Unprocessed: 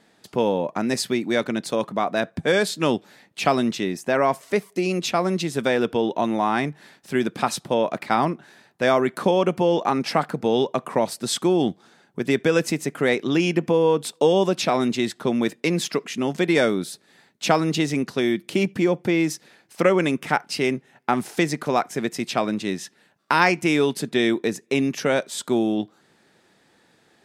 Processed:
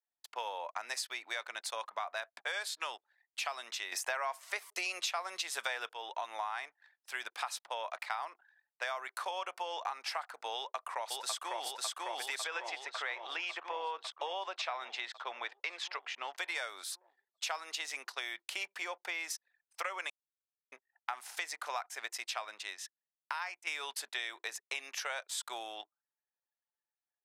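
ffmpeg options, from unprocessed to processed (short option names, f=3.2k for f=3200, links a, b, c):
-filter_complex "[0:a]asplit=2[a][b];[b]afade=t=in:st=10.55:d=0.01,afade=t=out:st=11.65:d=0.01,aecho=0:1:550|1100|1650|2200|2750|3300|3850|4400|4950|5500|6050|6600:0.841395|0.588977|0.412284|0.288599|0.202019|0.141413|0.0989893|0.0692925|0.0485048|0.0339533|0.0237673|0.0166371[c];[a][c]amix=inputs=2:normalize=0,asettb=1/sr,asplit=3[d][e][f];[d]atrim=end=12.444[g];[e]atrim=start=12.44:end=16.38,asetpts=PTS-STARTPTS,afade=t=in:d=0.004:c=qsin,afade=t=out:st=3.936:d=0.004:c=qsin,highpass=220,lowpass=3.5k[h];[f]atrim=start=16.376[i];[g][h]acrossfade=d=0.004:c1=hsin:c2=qsin[j];[j][i]acrossfade=d=0.004:c1=qsin:c2=hsin,asplit=6[k][l][m][n][o][p];[k]atrim=end=3.922[q];[l]atrim=start=3.918:end=5.892,asetpts=PTS-STARTPTS,volume=11dB[r];[m]atrim=start=5.888:end=20.1,asetpts=PTS-STARTPTS,afade=t=out:st=14.208:d=0.004:c=hsin[s];[n]atrim=start=20.1:end=20.72,asetpts=PTS-STARTPTS,volume=0[t];[o]atrim=start=20.72:end=23.67,asetpts=PTS-STARTPTS,afade=t=in:d=0.004:c=hsin,afade=t=out:st=1.33:d=1.62:silence=0.266073[u];[p]atrim=start=23.67,asetpts=PTS-STARTPTS,afade=t=in:d=0.004:c=hsin:silence=0.266073[v];[q][r]acrossfade=d=0.004:c1=hsin:c2=hsin[w];[s][t][u][v]concat=n=4:v=0:a=1[x];[w][x]acrossfade=d=0.004:c1=hsin:c2=hsin,anlmdn=0.1,highpass=f=810:w=0.5412,highpass=f=810:w=1.3066,acompressor=threshold=-30dB:ratio=6,volume=-4.5dB"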